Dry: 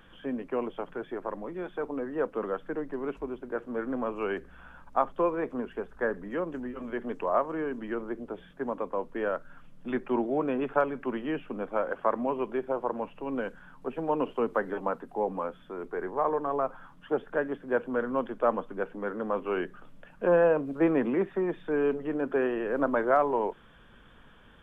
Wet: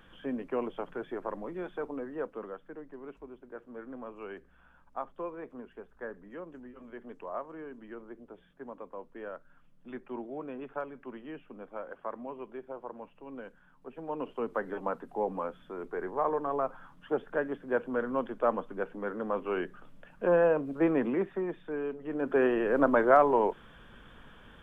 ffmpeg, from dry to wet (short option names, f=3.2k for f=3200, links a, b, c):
-af "volume=20.5dB,afade=t=out:st=1.58:d=1.02:silence=0.316228,afade=t=in:st=13.86:d=1.18:silence=0.334965,afade=t=out:st=21.08:d=0.89:silence=0.398107,afade=t=in:st=21.97:d=0.49:silence=0.237137"